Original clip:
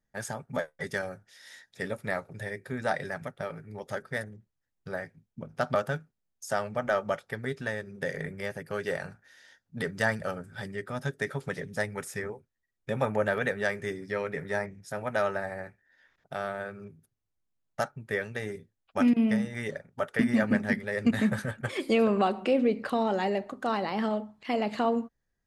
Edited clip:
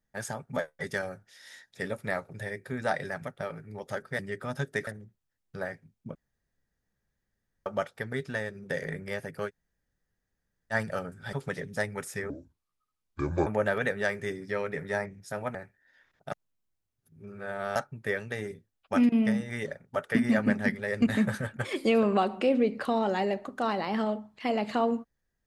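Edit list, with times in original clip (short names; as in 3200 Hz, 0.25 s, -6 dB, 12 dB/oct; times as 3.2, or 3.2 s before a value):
5.47–6.98 room tone
8.8–10.05 room tone, crossfade 0.06 s
10.65–11.33 move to 4.19
12.3–13.07 speed 66%
15.15–15.59 cut
16.36–17.8 reverse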